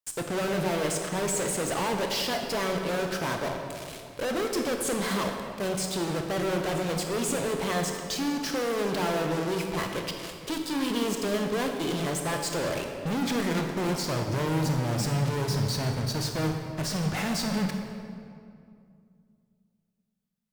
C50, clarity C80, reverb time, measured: 4.0 dB, 5.0 dB, 2.4 s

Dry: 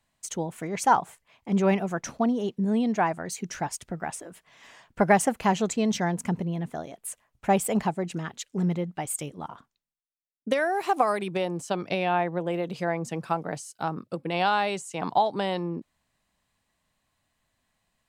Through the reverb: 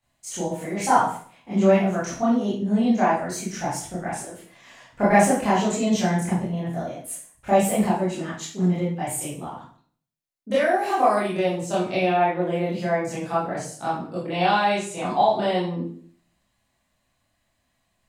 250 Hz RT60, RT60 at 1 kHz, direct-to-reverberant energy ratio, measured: 0.60 s, 0.50 s, -10.0 dB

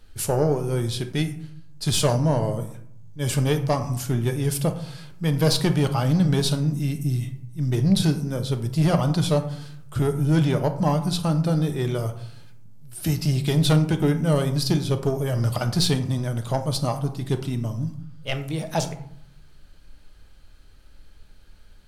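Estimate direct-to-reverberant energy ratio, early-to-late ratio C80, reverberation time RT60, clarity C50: 6.5 dB, 15.0 dB, 0.65 s, 11.5 dB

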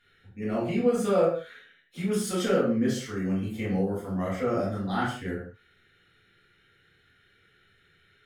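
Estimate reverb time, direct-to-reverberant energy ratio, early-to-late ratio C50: no single decay rate, -8.0 dB, 3.5 dB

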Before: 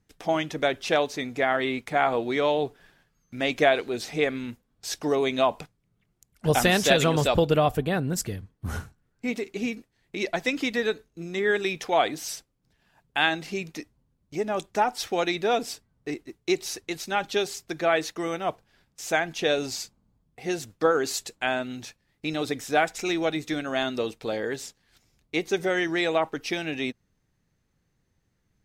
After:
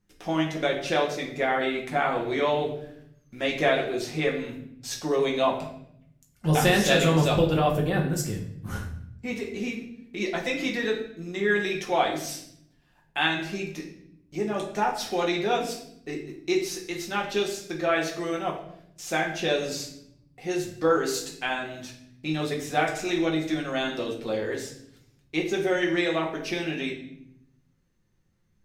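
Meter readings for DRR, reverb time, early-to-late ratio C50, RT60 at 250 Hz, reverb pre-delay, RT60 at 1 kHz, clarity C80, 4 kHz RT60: -1.5 dB, 0.70 s, 7.0 dB, 1.2 s, 5 ms, 0.60 s, 10.5 dB, 0.60 s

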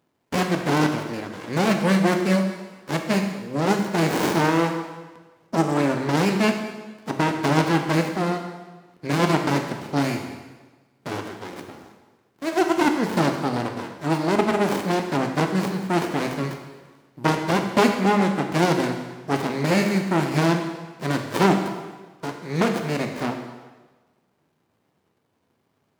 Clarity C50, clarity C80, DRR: 6.0 dB, 7.5 dB, 4.0 dB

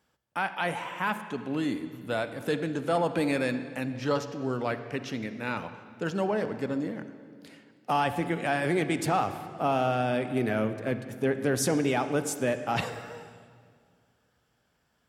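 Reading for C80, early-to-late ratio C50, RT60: 11.5 dB, 10.5 dB, 2.1 s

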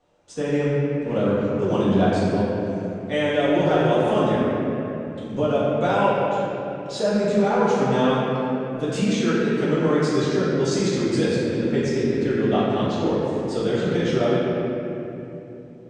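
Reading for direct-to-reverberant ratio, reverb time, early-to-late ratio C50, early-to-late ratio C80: -11.0 dB, 2.8 s, -4.0 dB, -2.5 dB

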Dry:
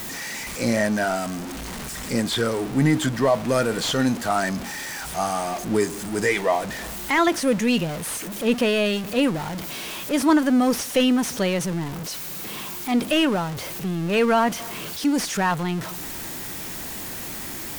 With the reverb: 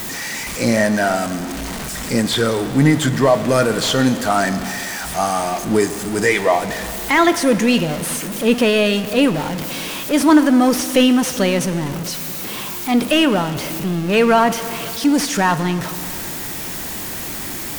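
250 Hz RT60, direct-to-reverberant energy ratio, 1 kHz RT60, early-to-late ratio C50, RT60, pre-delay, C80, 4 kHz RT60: 3.0 s, 11.5 dB, 2.6 s, 12.5 dB, 2.7 s, 6 ms, 13.5 dB, 2.5 s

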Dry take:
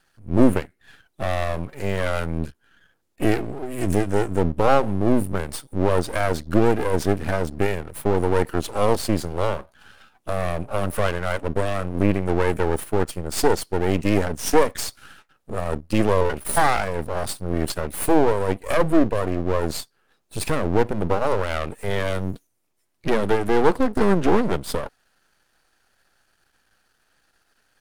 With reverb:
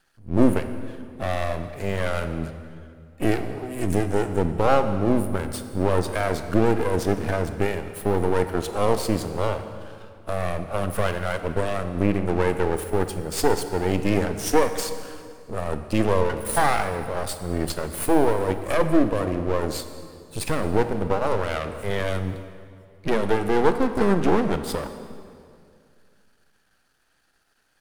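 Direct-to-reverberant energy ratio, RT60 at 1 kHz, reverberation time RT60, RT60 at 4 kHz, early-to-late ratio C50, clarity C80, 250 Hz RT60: 9.0 dB, 2.2 s, 2.3 s, 1.8 s, 10.0 dB, 11.0 dB, 2.4 s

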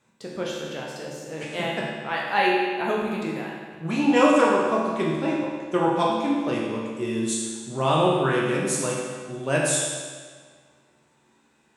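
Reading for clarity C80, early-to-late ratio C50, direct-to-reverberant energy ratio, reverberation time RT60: 2.0 dB, 0.0 dB, -4.0 dB, 1.7 s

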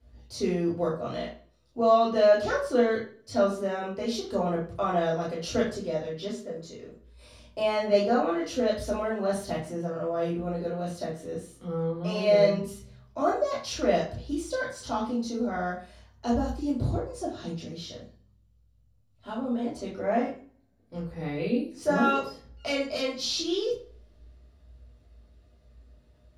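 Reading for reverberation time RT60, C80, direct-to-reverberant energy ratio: 0.45 s, 10.5 dB, -7.0 dB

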